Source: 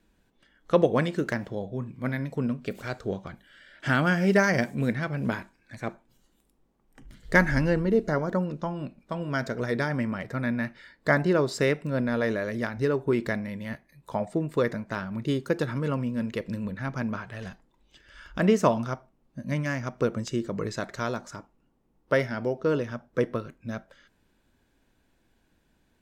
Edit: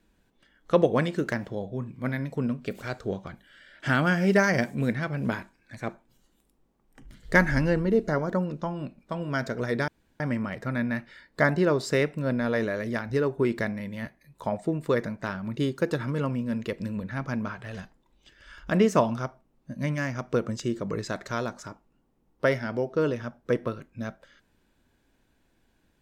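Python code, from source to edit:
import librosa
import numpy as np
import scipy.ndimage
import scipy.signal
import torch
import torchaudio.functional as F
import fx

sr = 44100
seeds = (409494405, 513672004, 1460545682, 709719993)

y = fx.edit(x, sr, fx.insert_room_tone(at_s=9.88, length_s=0.32), tone=tone)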